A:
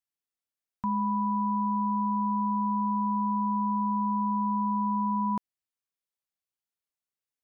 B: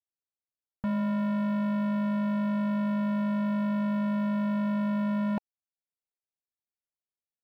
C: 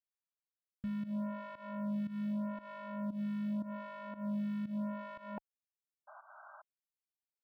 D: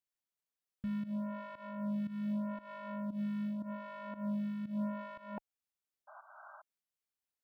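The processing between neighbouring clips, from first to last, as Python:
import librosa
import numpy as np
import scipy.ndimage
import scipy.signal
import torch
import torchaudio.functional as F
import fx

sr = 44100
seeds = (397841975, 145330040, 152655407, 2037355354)

y1 = scipy.signal.sosfilt(scipy.signal.cheby1(5, 1.0, 850.0, 'lowpass', fs=sr, output='sos'), x)
y1 = fx.leveller(y1, sr, passes=3)
y2 = fx.spec_paint(y1, sr, seeds[0], shape='noise', start_s=6.07, length_s=0.55, low_hz=580.0, high_hz=1600.0, level_db=-47.0)
y2 = fx.volume_shaper(y2, sr, bpm=116, per_beat=1, depth_db=-15, release_ms=165.0, shape='fast start')
y2 = fx.stagger_phaser(y2, sr, hz=0.83)
y2 = y2 * 10.0 ** (-7.0 / 20.0)
y3 = fx.am_noise(y2, sr, seeds[1], hz=5.7, depth_pct=50)
y3 = y3 * 10.0 ** (2.5 / 20.0)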